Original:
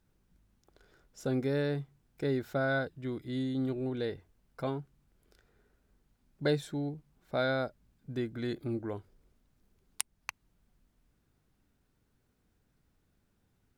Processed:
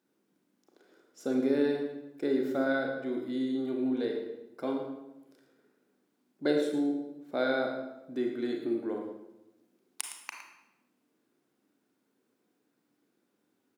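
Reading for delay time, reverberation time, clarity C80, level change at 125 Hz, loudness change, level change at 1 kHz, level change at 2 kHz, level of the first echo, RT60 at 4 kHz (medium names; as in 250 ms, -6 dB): 112 ms, 1.0 s, 5.5 dB, -14.0 dB, +2.5 dB, +1.0 dB, +0.5 dB, -10.0 dB, 0.75 s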